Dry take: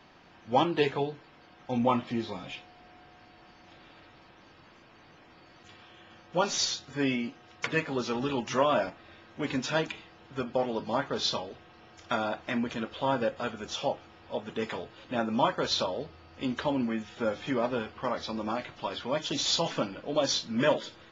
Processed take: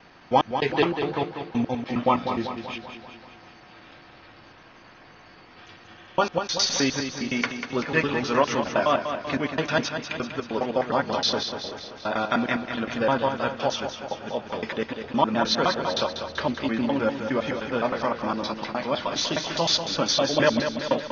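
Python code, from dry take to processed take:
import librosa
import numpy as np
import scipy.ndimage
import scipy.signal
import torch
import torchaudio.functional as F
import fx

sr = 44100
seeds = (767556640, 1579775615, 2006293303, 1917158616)

y = fx.block_reorder(x, sr, ms=103.0, group=3)
y = scipy.signal.sosfilt(scipy.signal.cheby1(6, 3, 6400.0, 'lowpass', fs=sr, output='sos'), y)
y = fx.echo_feedback(y, sr, ms=193, feedback_pct=57, wet_db=-8)
y = y * librosa.db_to_amplitude(7.0)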